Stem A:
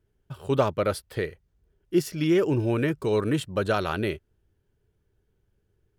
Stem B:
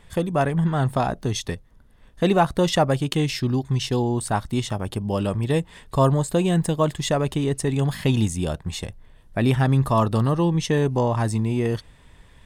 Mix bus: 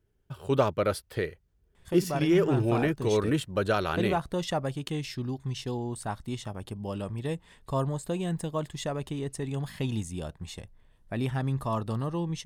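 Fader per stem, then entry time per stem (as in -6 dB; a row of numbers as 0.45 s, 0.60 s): -1.5 dB, -10.5 dB; 0.00 s, 1.75 s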